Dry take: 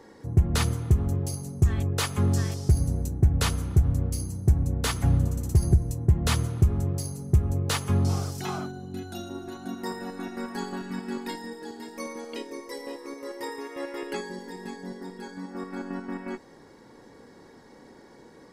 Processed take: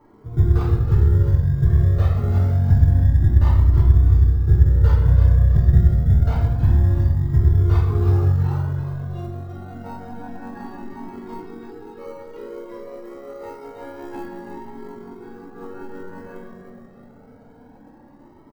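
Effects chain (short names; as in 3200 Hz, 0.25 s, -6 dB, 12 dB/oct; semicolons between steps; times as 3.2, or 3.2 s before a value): air absorption 190 m; on a send: feedback echo 0.324 s, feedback 39%, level -7.5 dB; on the sum: reverb RT60 1.1 s, pre-delay 3 ms, DRR -8 dB; in parallel at -6.5 dB: sample-and-hold 25×; on the sum: band shelf 5100 Hz -10 dB 3 oct; cascading flanger rising 0.27 Hz; gain -4.5 dB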